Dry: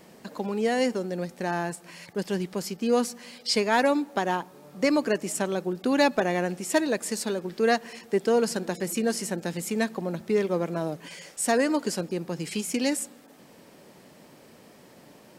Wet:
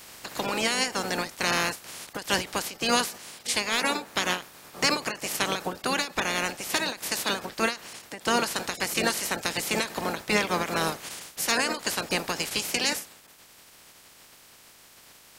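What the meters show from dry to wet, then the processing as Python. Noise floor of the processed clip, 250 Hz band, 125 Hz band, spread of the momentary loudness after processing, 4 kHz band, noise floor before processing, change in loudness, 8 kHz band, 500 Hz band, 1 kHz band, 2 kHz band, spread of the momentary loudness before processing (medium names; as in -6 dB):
-54 dBFS, -6.5 dB, -4.0 dB, 8 LU, +7.5 dB, -53 dBFS, 0.0 dB, +4.0 dB, -6.5 dB, +1.0 dB, +4.5 dB, 10 LU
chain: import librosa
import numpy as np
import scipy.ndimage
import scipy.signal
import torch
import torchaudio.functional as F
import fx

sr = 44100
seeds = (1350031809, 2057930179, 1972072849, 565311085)

y = fx.spec_clip(x, sr, under_db=26)
y = fx.rider(y, sr, range_db=5, speed_s=0.5)
y = fx.end_taper(y, sr, db_per_s=180.0)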